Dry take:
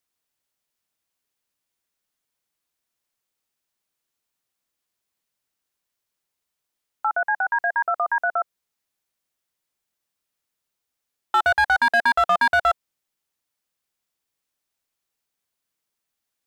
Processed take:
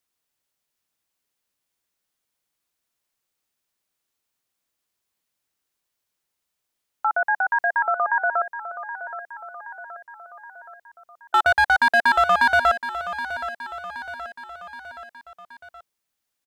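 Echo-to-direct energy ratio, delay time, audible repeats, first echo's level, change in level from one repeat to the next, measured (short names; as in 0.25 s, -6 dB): -10.5 dB, 0.773 s, 4, -12.0 dB, -5.0 dB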